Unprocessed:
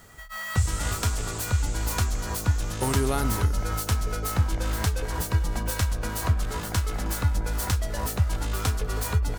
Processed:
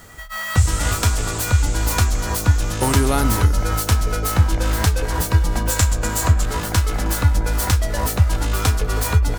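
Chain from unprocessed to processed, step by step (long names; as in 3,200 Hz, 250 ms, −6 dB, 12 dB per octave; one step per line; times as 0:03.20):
0:05.70–0:06.45: parametric band 7,300 Hz +10.5 dB 0.28 octaves
on a send: convolution reverb RT60 0.20 s, pre-delay 3 ms, DRR 11.5 dB
on the sum: level +7.5 dB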